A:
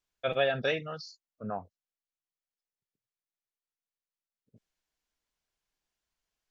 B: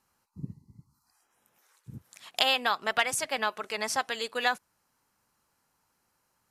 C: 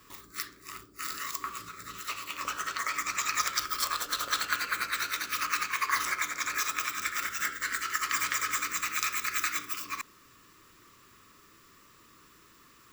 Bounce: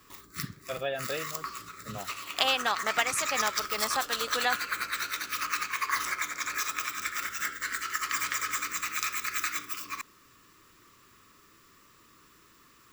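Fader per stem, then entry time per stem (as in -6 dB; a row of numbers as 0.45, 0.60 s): -5.5, -1.5, -1.0 dB; 0.45, 0.00, 0.00 s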